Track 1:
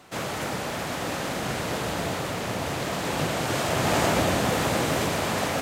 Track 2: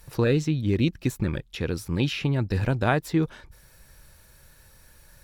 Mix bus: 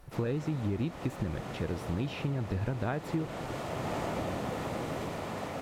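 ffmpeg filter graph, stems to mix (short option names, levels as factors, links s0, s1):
-filter_complex "[0:a]bandreject=f=1600:w=13,volume=0.335[s0];[1:a]volume=0.668[s1];[s0][s1]amix=inputs=2:normalize=0,highshelf=f=2400:g=-10.5,acompressor=threshold=0.0398:ratio=6"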